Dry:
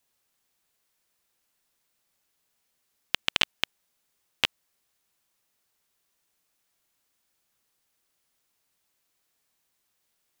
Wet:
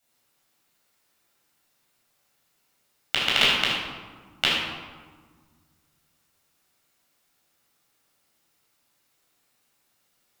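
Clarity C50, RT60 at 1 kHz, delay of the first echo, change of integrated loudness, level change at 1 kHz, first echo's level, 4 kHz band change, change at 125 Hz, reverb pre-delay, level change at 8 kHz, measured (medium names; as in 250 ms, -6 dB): -0.5 dB, 1.5 s, no echo, +5.0 dB, +8.0 dB, no echo, +6.5 dB, +8.0 dB, 13 ms, +4.5 dB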